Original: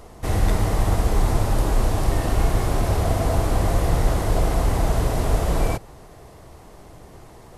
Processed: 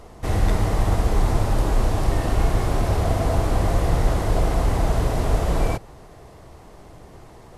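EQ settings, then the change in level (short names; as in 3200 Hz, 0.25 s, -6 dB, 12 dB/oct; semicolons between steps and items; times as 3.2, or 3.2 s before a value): high shelf 9200 Hz -7.5 dB; 0.0 dB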